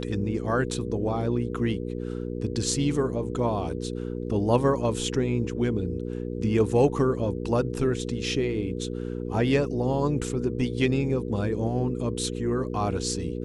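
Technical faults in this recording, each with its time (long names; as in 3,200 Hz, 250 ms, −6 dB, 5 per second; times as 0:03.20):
mains hum 60 Hz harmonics 8 −32 dBFS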